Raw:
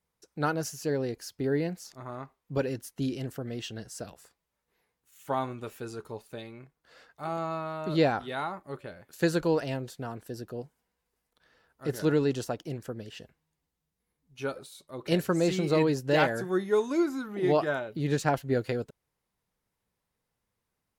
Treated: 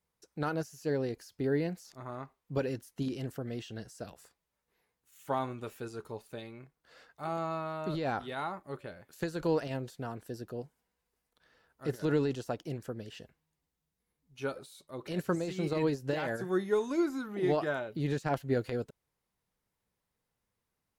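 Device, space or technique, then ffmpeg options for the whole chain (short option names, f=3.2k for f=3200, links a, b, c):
de-esser from a sidechain: -filter_complex "[0:a]asplit=2[a][b];[b]highpass=5.2k,apad=whole_len=925580[c];[a][c]sidechaincompress=threshold=-50dB:ratio=6:attack=3:release=47,volume=-2dB"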